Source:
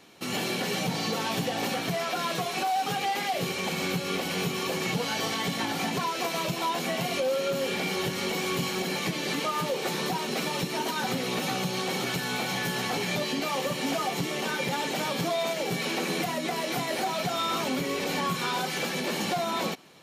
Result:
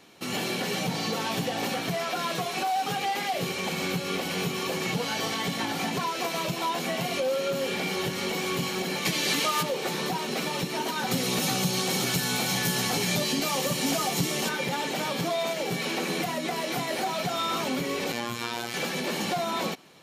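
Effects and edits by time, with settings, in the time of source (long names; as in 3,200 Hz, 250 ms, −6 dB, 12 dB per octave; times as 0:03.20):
0:09.05–0:09.63: high-shelf EQ 2,100 Hz +9 dB
0:11.11–0:14.49: bass and treble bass +5 dB, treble +9 dB
0:18.12–0:18.74: phases set to zero 118 Hz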